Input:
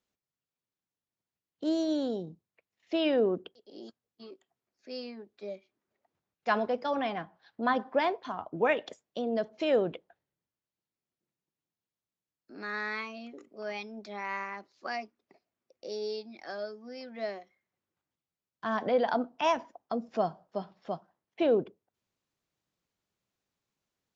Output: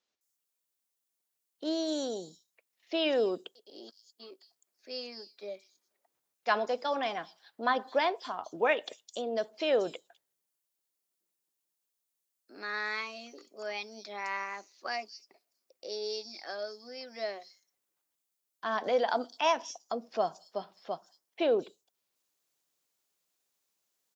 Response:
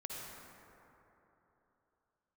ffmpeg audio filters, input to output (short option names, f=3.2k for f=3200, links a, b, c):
-filter_complex "[0:a]bass=f=250:g=-14,treble=f=4k:g=13,acrossover=split=5600[a][b];[b]adelay=210[c];[a][c]amix=inputs=2:normalize=0,asettb=1/sr,asplit=3[d][e][f];[d]atrim=end=14.174[g];[e]atrim=start=14.17:end=15.03,asetpts=PTS-STARTPTS,afade=t=in:d=0.004:c=qsin,afade=t=out:st=0.856:d=0.004:c=qsin,aeval=exprs='0.075*(cos(1*acos(clip(val(0)/0.075,-1,1)))-cos(1*PI/2))+0.000473*(cos(4*acos(clip(val(0)/0.075,-1,1)))-cos(4*PI/2))':c=same[h];[f]atrim=start=15.026[i];[g][h]acrossfade=d=0.004:c1=hsin:c2=qsin[j];[j][i]acrossfade=d=0.004:c1=qsin:c2=hsin"